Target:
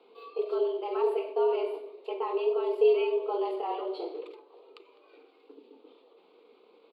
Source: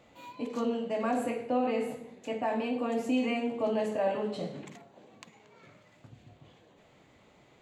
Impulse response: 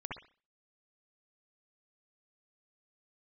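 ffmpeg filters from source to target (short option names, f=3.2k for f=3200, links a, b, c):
-af "firequalizer=gain_entry='entry(140,0);entry(290,14);entry(440,-4);entry(990,3);entry(1600,-12);entry(2300,1);entry(4300,2);entry(6100,-27);entry(10000,-10)':delay=0.05:min_phase=1,afreqshift=170,atempo=1.1,volume=-3.5dB"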